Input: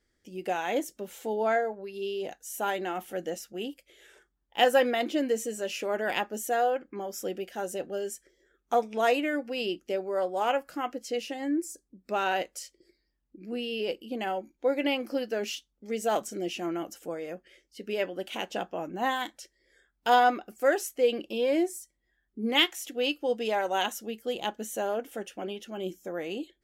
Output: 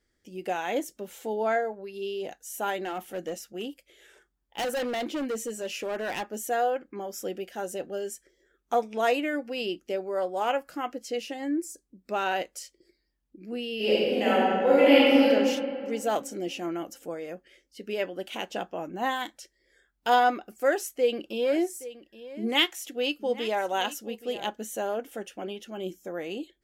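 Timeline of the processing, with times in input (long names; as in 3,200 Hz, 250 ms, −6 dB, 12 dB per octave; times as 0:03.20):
0:02.84–0:06.50: gain into a clipping stage and back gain 27 dB
0:13.76–0:15.26: thrown reverb, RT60 2.2 s, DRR −10 dB
0:20.43–0:24.51: single-tap delay 822 ms −16 dB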